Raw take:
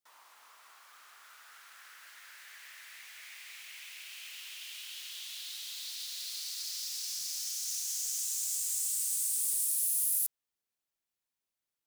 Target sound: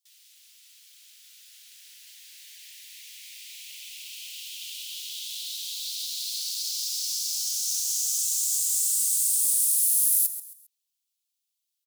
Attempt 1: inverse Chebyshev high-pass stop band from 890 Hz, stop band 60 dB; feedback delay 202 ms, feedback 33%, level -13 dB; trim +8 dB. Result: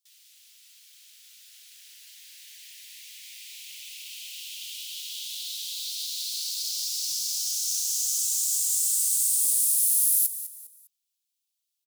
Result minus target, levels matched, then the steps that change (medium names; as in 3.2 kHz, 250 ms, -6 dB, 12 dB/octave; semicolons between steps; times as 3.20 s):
echo 68 ms late
change: feedback delay 134 ms, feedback 33%, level -13 dB